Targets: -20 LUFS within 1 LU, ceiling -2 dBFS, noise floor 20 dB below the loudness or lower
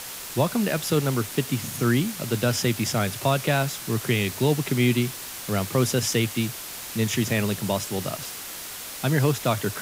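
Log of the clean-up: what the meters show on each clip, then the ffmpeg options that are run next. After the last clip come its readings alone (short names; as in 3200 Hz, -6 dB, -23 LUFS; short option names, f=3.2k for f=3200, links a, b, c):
noise floor -37 dBFS; noise floor target -45 dBFS; loudness -25.0 LUFS; peak -9.5 dBFS; loudness target -20.0 LUFS
-> -af "afftdn=nr=8:nf=-37"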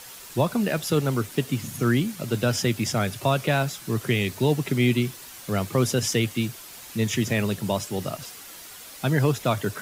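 noise floor -43 dBFS; noise floor target -45 dBFS
-> -af "afftdn=nr=6:nf=-43"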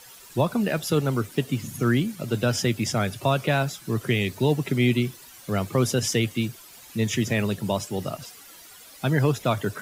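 noise floor -47 dBFS; loudness -25.0 LUFS; peak -10.0 dBFS; loudness target -20.0 LUFS
-> -af "volume=5dB"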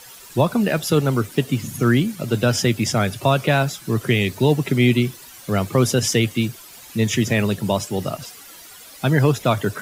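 loudness -20.0 LUFS; peak -5.0 dBFS; noise floor -42 dBFS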